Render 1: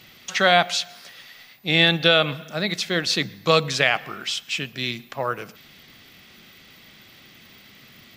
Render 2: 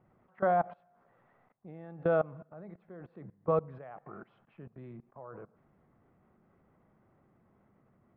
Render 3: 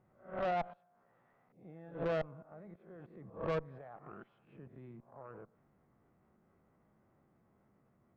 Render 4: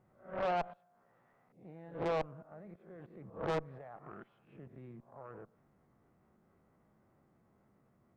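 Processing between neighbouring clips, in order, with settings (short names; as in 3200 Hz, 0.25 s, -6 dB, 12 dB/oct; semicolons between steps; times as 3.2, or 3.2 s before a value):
LPF 1100 Hz 24 dB/oct; bell 260 Hz -3.5 dB 0.46 oct; level quantiser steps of 21 dB; gain -4.5 dB
spectral swells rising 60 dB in 0.39 s; reverse echo 90 ms -17 dB; tube stage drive 28 dB, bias 0.7; gain -1.5 dB
Doppler distortion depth 0.52 ms; gain +1 dB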